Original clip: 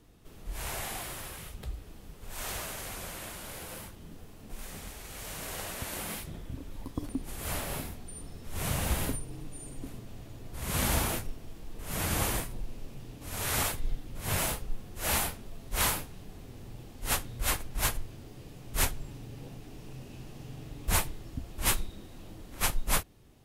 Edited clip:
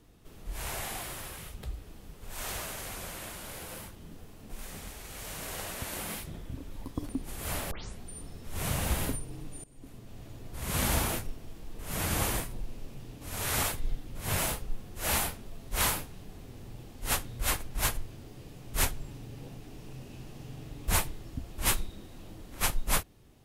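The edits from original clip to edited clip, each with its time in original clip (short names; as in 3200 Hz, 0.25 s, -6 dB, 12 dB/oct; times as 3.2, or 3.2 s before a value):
7.71 tape start 0.29 s
9.64–10.27 fade in, from -19.5 dB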